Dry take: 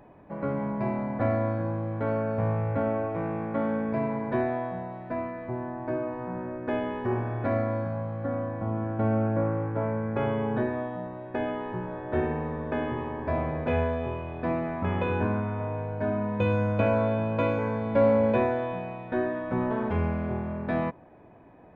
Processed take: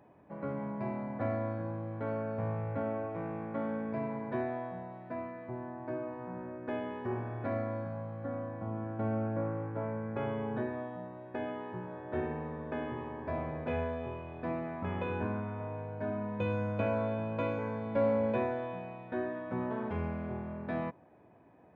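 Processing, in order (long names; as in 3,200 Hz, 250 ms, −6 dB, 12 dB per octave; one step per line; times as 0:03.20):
high-pass filter 75 Hz
level −7.5 dB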